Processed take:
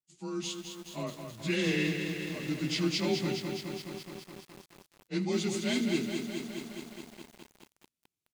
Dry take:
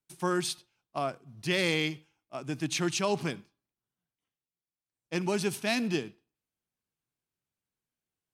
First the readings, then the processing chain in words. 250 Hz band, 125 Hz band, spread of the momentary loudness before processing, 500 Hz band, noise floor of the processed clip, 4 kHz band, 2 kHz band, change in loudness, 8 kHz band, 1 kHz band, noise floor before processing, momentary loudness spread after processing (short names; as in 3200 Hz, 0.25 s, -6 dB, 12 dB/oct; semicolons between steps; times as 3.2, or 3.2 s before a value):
+2.0 dB, +1.0 dB, 13 LU, -2.0 dB, under -85 dBFS, -0.5 dB, -2.5 dB, -2.0 dB, -3.0 dB, -8.0 dB, under -85 dBFS, 17 LU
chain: inharmonic rescaling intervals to 92%; AGC gain up to 10 dB; band shelf 970 Hz -8.5 dB 2.3 oct; on a send: feedback echo 77 ms, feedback 49%, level -17.5 dB; on the sum: lo-fi delay 0.21 s, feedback 80%, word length 7-bit, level -6 dB; gain -8 dB